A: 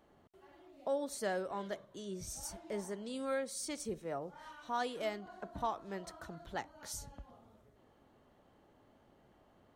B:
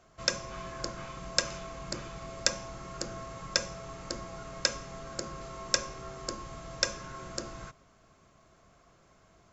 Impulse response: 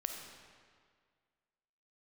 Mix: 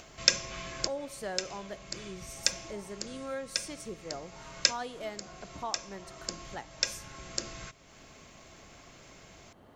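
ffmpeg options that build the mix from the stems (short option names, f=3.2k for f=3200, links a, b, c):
-filter_complex "[0:a]volume=-3dB,asplit=3[a][b][c];[b]volume=-13dB[d];[1:a]highshelf=f=1.7k:t=q:w=1.5:g=7,volume=-1dB[e];[c]apad=whole_len=420143[f];[e][f]sidechaincompress=threshold=-50dB:ratio=4:attack=47:release=814[g];[2:a]atrim=start_sample=2205[h];[d][h]afir=irnorm=-1:irlink=0[i];[a][g][i]amix=inputs=3:normalize=0,acompressor=mode=upward:threshold=-44dB:ratio=2.5"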